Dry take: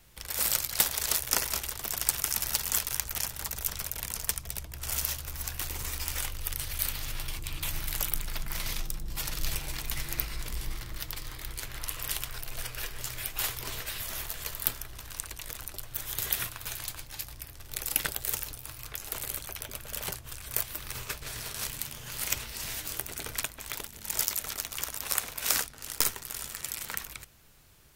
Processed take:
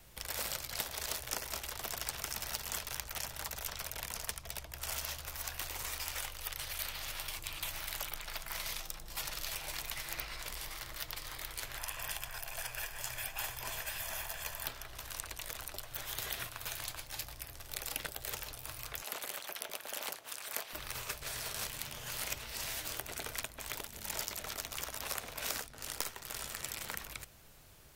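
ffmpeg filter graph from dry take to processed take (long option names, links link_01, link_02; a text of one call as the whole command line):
ffmpeg -i in.wav -filter_complex "[0:a]asettb=1/sr,asplit=3[link_01][link_02][link_03];[link_01]atrim=end=11.774[link_04];[link_02]atrim=start=11.77:end=14.67,asetpts=PTS-STARTPTS,afade=type=in:duration=0.004:curve=qsin,afade=type=out:start_time=2.896:duration=0.004:curve=qsin,equalizer=frequency=4000:width_type=o:width=0.3:gain=-8,bandreject=frequency=5600:width=26,aecho=1:1:1.2:0.38,atrim=end_sample=127890[link_05];[link_03]atrim=start=14.666[link_06];[link_04][link_05]acrossfade=duration=0.004:curve1=hsin:curve2=qsin[link_07];[link_07][link_06]acrossfade=duration=0.004:curve1=qsin:curve2=hsin,asettb=1/sr,asplit=3[link_08][link_09][link_10];[link_08]atrim=end=19.024[link_11];[link_09]atrim=start=19.02:end=20.73,asetpts=PTS-STARTPTS,afade=type=in:duration=0.004:curve=qsin,afade=type=out:start_time=1.706:duration=0.004:curve=qsin,highpass=530,acontrast=34,tremolo=f=220:d=0.947[link_12];[link_10]atrim=start=20.726[link_13];[link_11][link_12]acrossfade=duration=0.004:curve1=hsin:curve2=qsin[link_14];[link_14][link_13]acrossfade=duration=0.004:curve1=qsin:curve2=hsin,equalizer=frequency=630:width_type=o:width=0.84:gain=4.5,acrossover=split=540|5600[link_15][link_16][link_17];[link_15]acompressor=threshold=-49dB:ratio=4[link_18];[link_16]acompressor=threshold=-40dB:ratio=4[link_19];[link_17]acompressor=threshold=-41dB:ratio=4[link_20];[link_18][link_19][link_20]amix=inputs=3:normalize=0" out.wav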